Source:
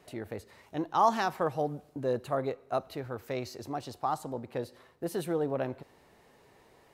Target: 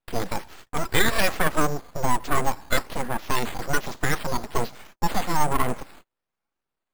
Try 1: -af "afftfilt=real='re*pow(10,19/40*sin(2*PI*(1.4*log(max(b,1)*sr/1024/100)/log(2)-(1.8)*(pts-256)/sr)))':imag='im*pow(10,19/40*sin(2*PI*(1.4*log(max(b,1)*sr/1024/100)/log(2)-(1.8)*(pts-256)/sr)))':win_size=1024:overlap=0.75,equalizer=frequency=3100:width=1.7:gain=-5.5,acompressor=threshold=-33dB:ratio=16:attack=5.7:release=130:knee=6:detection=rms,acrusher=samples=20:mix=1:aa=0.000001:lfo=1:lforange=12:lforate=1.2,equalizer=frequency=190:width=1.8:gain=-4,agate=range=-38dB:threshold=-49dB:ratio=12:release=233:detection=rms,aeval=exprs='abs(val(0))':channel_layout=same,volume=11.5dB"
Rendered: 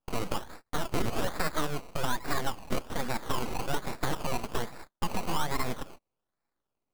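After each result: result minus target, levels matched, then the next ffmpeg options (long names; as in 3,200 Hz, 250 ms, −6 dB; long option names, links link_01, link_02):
downward compressor: peak gain reduction +10 dB; sample-and-hold swept by an LFO: distortion +11 dB
-af "afftfilt=real='re*pow(10,19/40*sin(2*PI*(1.4*log(max(b,1)*sr/1024/100)/log(2)-(1.8)*(pts-256)/sr)))':imag='im*pow(10,19/40*sin(2*PI*(1.4*log(max(b,1)*sr/1024/100)/log(2)-(1.8)*(pts-256)/sr)))':win_size=1024:overlap=0.75,equalizer=frequency=3100:width=1.7:gain=-5.5,acompressor=threshold=-22.5dB:ratio=16:attack=5.7:release=130:knee=6:detection=rms,acrusher=samples=20:mix=1:aa=0.000001:lfo=1:lforange=12:lforate=1.2,equalizer=frequency=190:width=1.8:gain=-4,agate=range=-38dB:threshold=-49dB:ratio=12:release=233:detection=rms,aeval=exprs='abs(val(0))':channel_layout=same,volume=11.5dB"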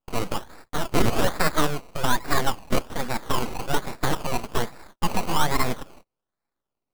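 sample-and-hold swept by an LFO: distortion +12 dB
-af "afftfilt=real='re*pow(10,19/40*sin(2*PI*(1.4*log(max(b,1)*sr/1024/100)/log(2)-(1.8)*(pts-256)/sr)))':imag='im*pow(10,19/40*sin(2*PI*(1.4*log(max(b,1)*sr/1024/100)/log(2)-(1.8)*(pts-256)/sr)))':win_size=1024:overlap=0.75,equalizer=frequency=3100:width=1.7:gain=-5.5,acompressor=threshold=-22.5dB:ratio=16:attack=5.7:release=130:knee=6:detection=rms,acrusher=samples=6:mix=1:aa=0.000001:lfo=1:lforange=3.6:lforate=1.2,equalizer=frequency=190:width=1.8:gain=-4,agate=range=-38dB:threshold=-49dB:ratio=12:release=233:detection=rms,aeval=exprs='abs(val(0))':channel_layout=same,volume=11.5dB"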